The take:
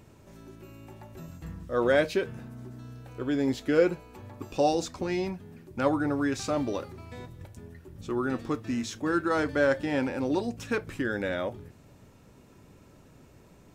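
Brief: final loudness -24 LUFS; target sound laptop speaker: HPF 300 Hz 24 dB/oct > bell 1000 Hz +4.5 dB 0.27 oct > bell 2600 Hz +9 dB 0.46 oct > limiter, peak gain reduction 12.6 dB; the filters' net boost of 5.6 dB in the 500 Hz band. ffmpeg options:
-af "highpass=f=300:w=0.5412,highpass=f=300:w=1.3066,equalizer=f=500:t=o:g=6.5,equalizer=f=1k:t=o:w=0.27:g=4.5,equalizer=f=2.6k:t=o:w=0.46:g=9,volume=5dB,alimiter=limit=-13dB:level=0:latency=1"

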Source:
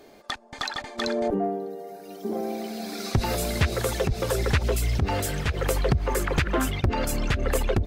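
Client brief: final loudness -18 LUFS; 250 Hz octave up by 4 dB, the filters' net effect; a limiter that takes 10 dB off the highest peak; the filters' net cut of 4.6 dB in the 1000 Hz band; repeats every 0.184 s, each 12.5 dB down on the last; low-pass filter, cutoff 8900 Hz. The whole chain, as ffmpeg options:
-af "lowpass=8.9k,equalizer=f=250:t=o:g=5.5,equalizer=f=1k:t=o:g=-7,alimiter=limit=-19dB:level=0:latency=1,aecho=1:1:184|368|552:0.237|0.0569|0.0137,volume=11dB"

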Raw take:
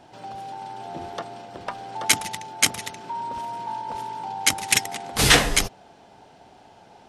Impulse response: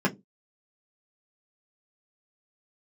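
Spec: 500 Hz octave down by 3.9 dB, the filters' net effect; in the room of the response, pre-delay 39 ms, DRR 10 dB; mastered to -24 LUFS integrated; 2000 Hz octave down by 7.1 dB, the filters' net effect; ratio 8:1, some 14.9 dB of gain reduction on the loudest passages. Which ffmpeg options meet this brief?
-filter_complex "[0:a]equalizer=f=500:t=o:g=-4.5,equalizer=f=2k:t=o:g=-8.5,acompressor=threshold=-31dB:ratio=8,asplit=2[a][b];[1:a]atrim=start_sample=2205,adelay=39[c];[b][c]afir=irnorm=-1:irlink=0,volume=-22.5dB[d];[a][d]amix=inputs=2:normalize=0,volume=12dB"

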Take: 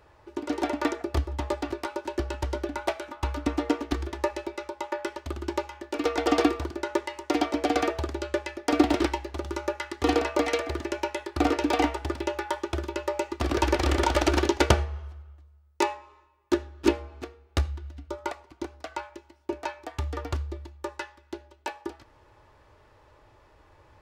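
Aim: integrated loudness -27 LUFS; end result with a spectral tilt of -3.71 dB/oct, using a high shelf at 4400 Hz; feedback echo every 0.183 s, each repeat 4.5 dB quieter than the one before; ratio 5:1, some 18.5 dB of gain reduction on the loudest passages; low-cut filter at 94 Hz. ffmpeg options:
-af "highpass=94,highshelf=f=4.4k:g=8,acompressor=threshold=-38dB:ratio=5,aecho=1:1:183|366|549|732|915|1098|1281|1464|1647:0.596|0.357|0.214|0.129|0.0772|0.0463|0.0278|0.0167|0.01,volume=13.5dB"

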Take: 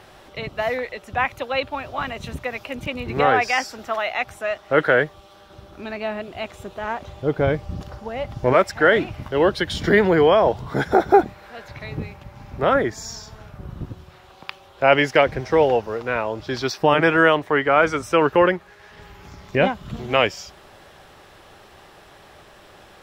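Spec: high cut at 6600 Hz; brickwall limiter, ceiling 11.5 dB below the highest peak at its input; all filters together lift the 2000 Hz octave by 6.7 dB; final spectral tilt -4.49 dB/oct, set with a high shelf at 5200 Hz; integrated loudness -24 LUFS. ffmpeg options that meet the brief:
-af "lowpass=6.6k,equalizer=f=2k:t=o:g=7.5,highshelf=f=5.2k:g=8.5,volume=-2dB,alimiter=limit=-11dB:level=0:latency=1"

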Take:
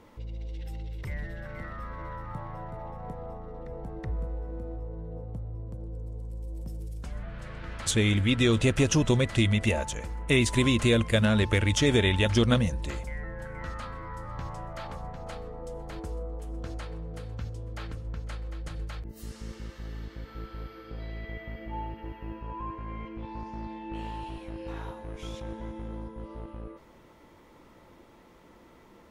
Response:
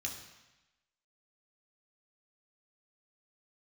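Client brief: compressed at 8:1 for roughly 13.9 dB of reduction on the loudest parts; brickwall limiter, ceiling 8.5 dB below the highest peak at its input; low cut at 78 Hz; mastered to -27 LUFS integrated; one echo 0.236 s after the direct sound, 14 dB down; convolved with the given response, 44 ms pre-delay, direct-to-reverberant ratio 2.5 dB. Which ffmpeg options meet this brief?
-filter_complex "[0:a]highpass=78,acompressor=threshold=-33dB:ratio=8,alimiter=level_in=5dB:limit=-24dB:level=0:latency=1,volume=-5dB,aecho=1:1:236:0.2,asplit=2[a][b];[1:a]atrim=start_sample=2205,adelay=44[c];[b][c]afir=irnorm=-1:irlink=0,volume=-2.5dB[d];[a][d]amix=inputs=2:normalize=0,volume=11.5dB"

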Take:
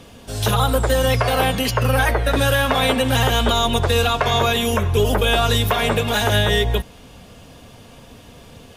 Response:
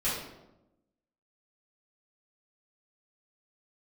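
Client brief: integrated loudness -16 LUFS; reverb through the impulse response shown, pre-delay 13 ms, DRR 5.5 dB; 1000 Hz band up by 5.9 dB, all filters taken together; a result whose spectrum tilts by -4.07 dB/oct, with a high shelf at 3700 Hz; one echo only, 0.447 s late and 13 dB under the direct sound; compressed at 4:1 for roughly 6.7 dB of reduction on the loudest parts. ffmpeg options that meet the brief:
-filter_complex "[0:a]equalizer=f=1k:t=o:g=7.5,highshelf=f=3.7k:g=4,acompressor=threshold=-18dB:ratio=4,aecho=1:1:447:0.224,asplit=2[a][b];[1:a]atrim=start_sample=2205,adelay=13[c];[b][c]afir=irnorm=-1:irlink=0,volume=-14dB[d];[a][d]amix=inputs=2:normalize=0,volume=4dB"

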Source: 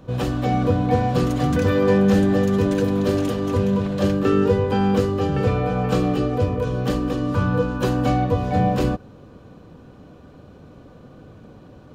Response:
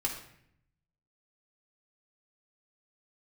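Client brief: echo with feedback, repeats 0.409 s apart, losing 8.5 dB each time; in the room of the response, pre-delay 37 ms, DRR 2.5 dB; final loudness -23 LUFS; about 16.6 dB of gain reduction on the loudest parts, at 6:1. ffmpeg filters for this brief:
-filter_complex "[0:a]acompressor=threshold=-32dB:ratio=6,aecho=1:1:409|818|1227|1636:0.376|0.143|0.0543|0.0206,asplit=2[a][b];[1:a]atrim=start_sample=2205,adelay=37[c];[b][c]afir=irnorm=-1:irlink=0,volume=-7dB[d];[a][d]amix=inputs=2:normalize=0,volume=10.5dB"

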